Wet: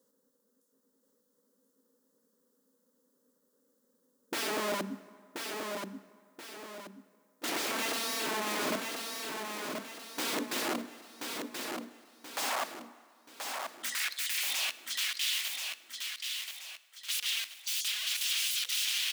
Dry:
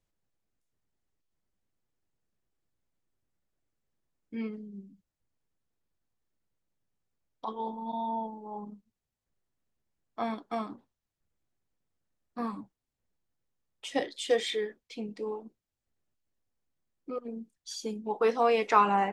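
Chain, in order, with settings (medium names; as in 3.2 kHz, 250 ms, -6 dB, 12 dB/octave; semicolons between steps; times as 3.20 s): treble shelf 7.2 kHz +10 dB; hum notches 60/120/180/240/300/360 Hz; in parallel at 0 dB: compression 4:1, threshold -36 dBFS, peak gain reduction 16.5 dB; on the sum: peak limiter -18.5 dBFS, peak gain reduction 11 dB; static phaser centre 480 Hz, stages 8; small resonant body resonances 260/490 Hz, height 13 dB, ringing for 40 ms; integer overflow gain 32 dB; high-pass sweep 300 Hz -> 3 kHz, 10.91–14.85 s; feedback delay 1030 ms, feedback 40%, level -5 dB; on a send at -16.5 dB: reverberation RT60 2.1 s, pre-delay 43 ms; on the sum: trim +2.5 dB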